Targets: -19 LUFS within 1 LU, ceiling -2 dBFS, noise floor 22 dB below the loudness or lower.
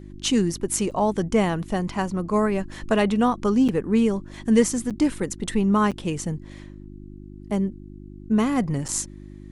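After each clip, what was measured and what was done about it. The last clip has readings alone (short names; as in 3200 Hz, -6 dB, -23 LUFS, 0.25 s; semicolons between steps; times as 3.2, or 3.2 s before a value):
dropouts 5; longest dropout 7.0 ms; hum 50 Hz; harmonics up to 350 Hz; hum level -40 dBFS; loudness -23.5 LUFS; peak -6.0 dBFS; loudness target -19.0 LUFS
-> interpolate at 0.91/3.68/4.9/5.91/8.88, 7 ms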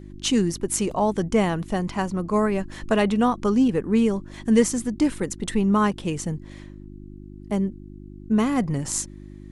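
dropouts 0; hum 50 Hz; harmonics up to 350 Hz; hum level -40 dBFS
-> de-hum 50 Hz, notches 7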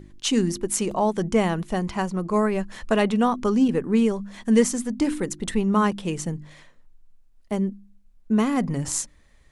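hum none; loudness -24.0 LUFS; peak -6.0 dBFS; loudness target -19.0 LUFS
-> gain +5 dB; limiter -2 dBFS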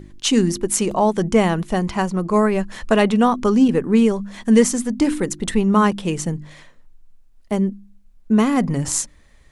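loudness -19.0 LUFS; peak -2.0 dBFS; noise floor -50 dBFS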